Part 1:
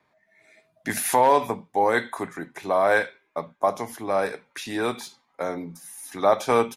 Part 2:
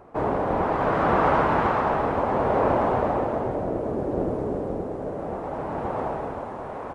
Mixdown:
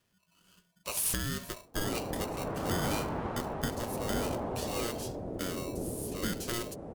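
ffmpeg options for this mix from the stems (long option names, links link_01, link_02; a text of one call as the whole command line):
ffmpeg -i stem1.wav -i stem2.wav -filter_complex "[0:a]acrossover=split=140|3000[link_01][link_02][link_03];[link_02]acompressor=threshold=-25dB:ratio=10[link_04];[link_01][link_04][link_03]amix=inputs=3:normalize=0,aeval=exprs='val(0)*sgn(sin(2*PI*820*n/s))':channel_layout=same,volume=-2dB[link_05];[1:a]adelay=1600,volume=-7.5dB[link_06];[link_05][link_06]amix=inputs=2:normalize=0,equalizer=frequency=1300:width_type=o:width=2.9:gain=-10.5" out.wav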